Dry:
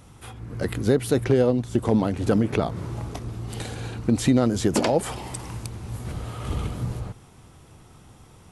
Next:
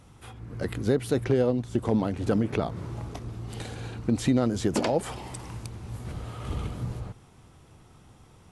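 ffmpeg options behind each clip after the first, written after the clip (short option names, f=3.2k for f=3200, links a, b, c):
-af "highshelf=f=10k:g=-7,volume=-4dB"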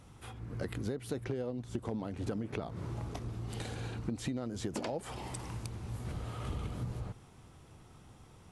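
-af "acompressor=threshold=-31dB:ratio=6,volume=-2.5dB"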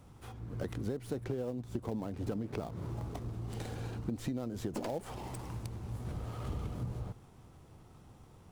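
-filter_complex "[0:a]acrossover=split=660|1200[a][b][c];[b]acrusher=bits=2:mode=log:mix=0:aa=0.000001[d];[c]aeval=exprs='max(val(0),0)':c=same[e];[a][d][e]amix=inputs=3:normalize=0"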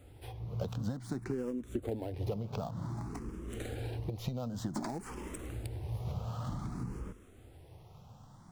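-filter_complex "[0:a]asplit=2[a][b];[b]afreqshift=0.54[c];[a][c]amix=inputs=2:normalize=1,volume=4dB"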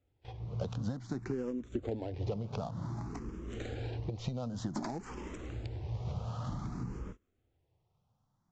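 -af "agate=range=-22dB:threshold=-45dB:ratio=16:detection=peak,aresample=16000,aresample=44100"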